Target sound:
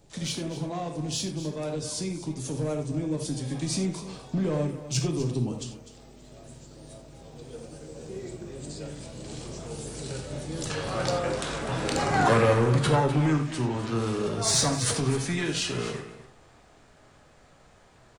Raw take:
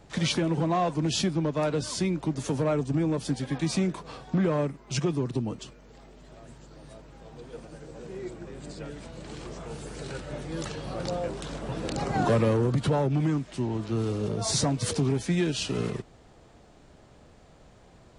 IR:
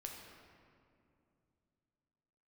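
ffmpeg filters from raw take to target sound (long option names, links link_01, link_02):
-filter_complex "[0:a]asoftclip=type=tanh:threshold=-16.5dB,highshelf=frequency=5300:gain=10,dynaudnorm=framelen=240:gausssize=31:maxgain=6dB,asetnsamples=nb_out_samples=441:pad=0,asendcmd='10.7 equalizer g 7.5',equalizer=frequency=1500:width=0.71:gain=-6.5,aecho=1:1:251:0.211[link_01];[1:a]atrim=start_sample=2205,atrim=end_sample=4410,asetrate=43218,aresample=44100[link_02];[link_01][link_02]afir=irnorm=-1:irlink=0"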